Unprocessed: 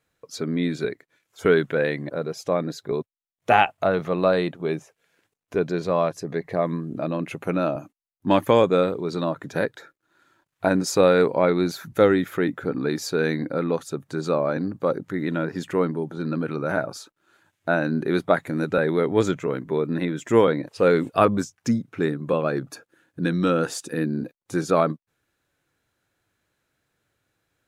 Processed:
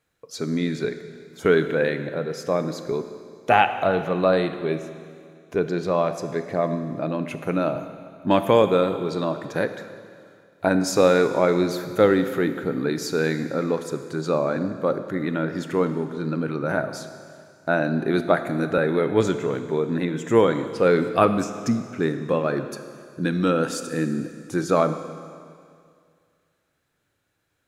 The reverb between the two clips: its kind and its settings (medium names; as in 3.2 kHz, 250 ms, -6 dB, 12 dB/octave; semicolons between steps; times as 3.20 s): Schroeder reverb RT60 2.2 s, combs from 25 ms, DRR 9 dB